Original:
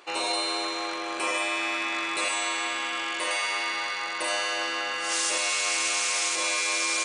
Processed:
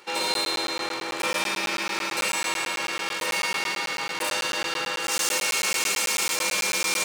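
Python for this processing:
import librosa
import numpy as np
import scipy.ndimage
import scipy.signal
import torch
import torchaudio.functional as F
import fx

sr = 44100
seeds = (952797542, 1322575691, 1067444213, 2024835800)

y = fx.lower_of_two(x, sr, delay_ms=2.2)
y = scipy.signal.sosfilt(scipy.signal.butter(4, 160.0, 'highpass', fs=sr, output='sos'), y)
y = fx.buffer_crackle(y, sr, first_s=0.34, period_s=0.11, block=512, kind='zero')
y = F.gain(torch.from_numpy(y), 3.5).numpy()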